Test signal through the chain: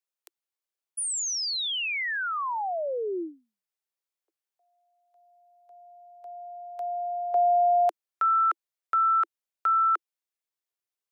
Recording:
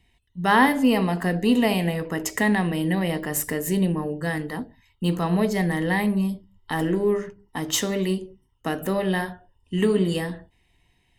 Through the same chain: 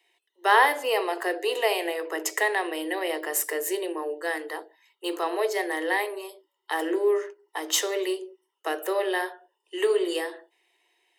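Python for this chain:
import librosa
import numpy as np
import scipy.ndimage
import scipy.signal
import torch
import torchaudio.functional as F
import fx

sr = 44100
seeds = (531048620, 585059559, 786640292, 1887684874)

y = scipy.signal.sosfilt(scipy.signal.butter(16, 330.0, 'highpass', fs=sr, output='sos'), x)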